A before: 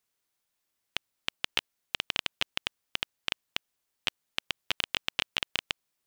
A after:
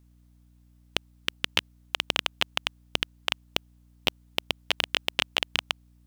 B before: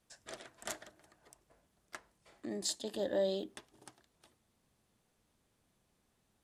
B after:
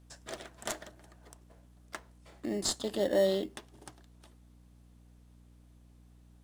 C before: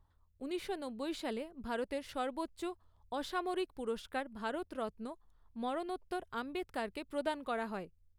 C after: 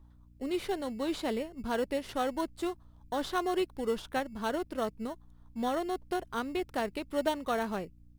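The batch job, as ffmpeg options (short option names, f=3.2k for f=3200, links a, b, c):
-filter_complex "[0:a]asplit=2[a][b];[b]acrusher=samples=18:mix=1:aa=0.000001,volume=-9.5dB[c];[a][c]amix=inputs=2:normalize=0,aeval=exprs='val(0)+0.000891*(sin(2*PI*60*n/s)+sin(2*PI*2*60*n/s)/2+sin(2*PI*3*60*n/s)/3+sin(2*PI*4*60*n/s)/4+sin(2*PI*5*60*n/s)/5)':c=same,volume=4dB"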